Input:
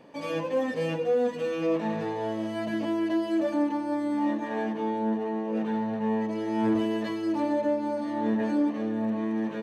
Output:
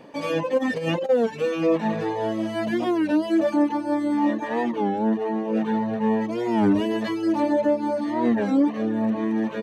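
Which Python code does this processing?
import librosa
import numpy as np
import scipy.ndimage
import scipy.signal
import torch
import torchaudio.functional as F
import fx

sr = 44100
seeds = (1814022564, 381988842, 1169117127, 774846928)

y = fx.dereverb_blind(x, sr, rt60_s=0.56)
y = fx.over_compress(y, sr, threshold_db=-31.0, ratio=-0.5, at=(0.57, 1.1), fade=0.02)
y = fx.record_warp(y, sr, rpm=33.33, depth_cents=160.0)
y = F.gain(torch.from_numpy(y), 6.5).numpy()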